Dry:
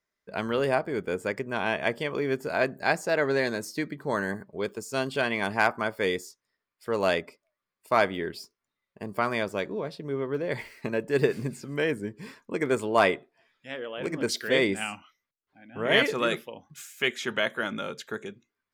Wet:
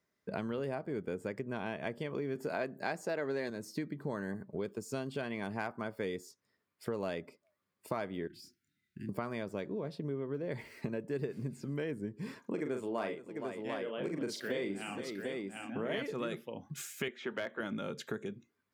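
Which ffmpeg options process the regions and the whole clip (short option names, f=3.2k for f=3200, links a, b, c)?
-filter_complex "[0:a]asettb=1/sr,asplit=3[a][b][c];[a]atrim=end=2.354[d];[b]atrim=start=2.35:end=3.5,asetpts=PTS-STARTPTS,afade=t=in:d=0.004:c=qsin,afade=t=out:st=1.146:d=0.004:c=qsin,highpass=f=260:p=1,acontrast=76[e];[c]atrim=start=3.496[f];[d][e]acrossfade=d=0.004:c1=hsin:c2=qsin[g];[g][f]acrossfade=d=0.004:c1=qsin:c2=hsin,asettb=1/sr,asplit=3[h][i][j];[h]atrim=end=8.274[k];[i]atrim=start=8.27:end=9.09,asetpts=PTS-STARTPTS,afade=t=in:d=0.004:c=qsin,afade=t=out:st=0.816:d=0.004:c=qsin,acompressor=threshold=-46dB:ratio=8:attack=3.2:release=140:knee=1:detection=peak,asuperstop=centerf=710:order=20:qfactor=0.7,asplit=2[l][m];[m]adelay=28,volume=-2.5dB[n];[l][n]amix=inputs=2:normalize=0,atrim=end_sample=36162[o];[j]atrim=start=9.086[p];[k][o]acrossfade=d=0.004:c1=hsin:c2=qsin[q];[q][p]acrossfade=d=0.004:c1=qsin:c2=hsin,asettb=1/sr,asplit=3[r][s][t];[r]atrim=end=12.404[u];[s]atrim=start=12.4:end=15.98,asetpts=PTS-STARTPTS,afade=t=in:d=0.004:c=qsin,afade=t=out:st=3.576:d=0.004:c=qsin,highpass=160,aecho=1:1:40|468|746:0.501|0.106|0.2,atrim=end_sample=157878[v];[t]atrim=start=15.976[w];[u][v]acrossfade=d=0.004:c1=hsin:c2=qsin[x];[x][w]acrossfade=d=0.004:c1=qsin:c2=hsin,asettb=1/sr,asplit=3[y][z][aa];[y]atrim=end=17.084[ab];[z]atrim=start=17.08:end=17.6,asetpts=PTS-STARTPTS,afade=t=in:d=0.004:c=qsin,afade=t=out:st=0.516:d=0.004:c=qsin,highpass=280,lowpass=2.9k,volume=17.5dB,asoftclip=hard,volume=-17.5dB[ac];[aa]atrim=start=17.596[ad];[ab][ac]acrossfade=d=0.004:c1=hsin:c2=qsin[ae];[ae][ad]acrossfade=d=0.004:c1=qsin:c2=hsin,lowshelf=f=440:g=11.5,acompressor=threshold=-36dB:ratio=5,highpass=97"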